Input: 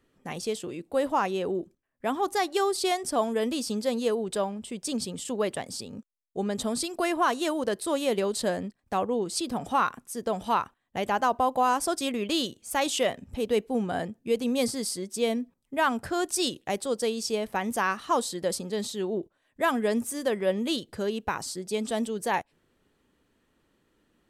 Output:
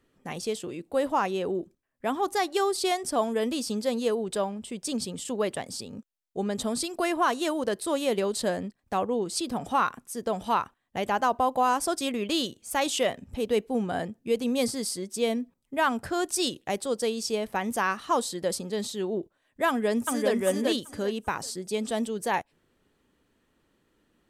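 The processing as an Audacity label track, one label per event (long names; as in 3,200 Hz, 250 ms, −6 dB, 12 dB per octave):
19.680000	20.330000	delay throw 390 ms, feedback 25%, level −2 dB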